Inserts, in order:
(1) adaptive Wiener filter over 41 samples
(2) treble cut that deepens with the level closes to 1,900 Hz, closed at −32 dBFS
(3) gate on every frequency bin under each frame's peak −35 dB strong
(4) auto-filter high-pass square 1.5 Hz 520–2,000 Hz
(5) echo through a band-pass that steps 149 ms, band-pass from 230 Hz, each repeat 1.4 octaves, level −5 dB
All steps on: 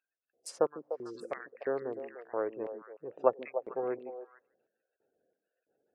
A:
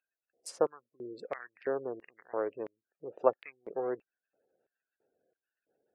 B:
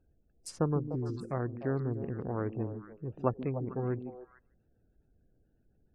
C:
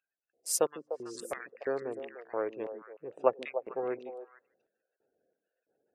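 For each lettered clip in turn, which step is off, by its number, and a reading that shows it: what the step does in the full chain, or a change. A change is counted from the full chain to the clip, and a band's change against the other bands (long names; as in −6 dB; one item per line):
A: 5, echo-to-direct ratio −11.5 dB to none audible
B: 4, 125 Hz band +27.5 dB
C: 2, 2 kHz band +2.5 dB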